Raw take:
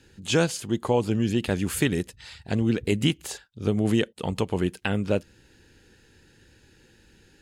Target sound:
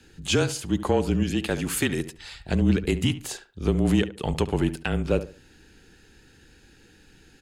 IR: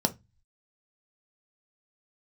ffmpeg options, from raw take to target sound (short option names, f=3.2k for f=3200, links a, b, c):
-filter_complex "[0:a]asettb=1/sr,asplit=3[a][b][c];[a]atrim=end=1.234[d];[b]atrim=start=1.23:end=2.17,asetpts=PTS-STARTPTS,afade=t=in:d=0.004:c=qsin,afade=t=out:st=0.936:d=0.004:c=qsin,lowshelf=f=180:g=-11[e];[c]atrim=start=2.166[f];[d][e]acrossfade=d=0.004:c1=hsin:c2=qsin[g];[g][f]acrossfade=d=0.004:c1=qsin:c2=hsin,alimiter=limit=-12dB:level=0:latency=1:release=386,asoftclip=type=tanh:threshold=-12dB,afreqshift=-30,asplit=2[h][i];[i]adelay=71,lowpass=f=1.9k:p=1,volume=-12.5dB,asplit=2[j][k];[k]adelay=71,lowpass=f=1.9k:p=1,volume=0.28,asplit=2[l][m];[m]adelay=71,lowpass=f=1.9k:p=1,volume=0.28[n];[j][l][n]amix=inputs=3:normalize=0[o];[h][o]amix=inputs=2:normalize=0,volume=2.5dB"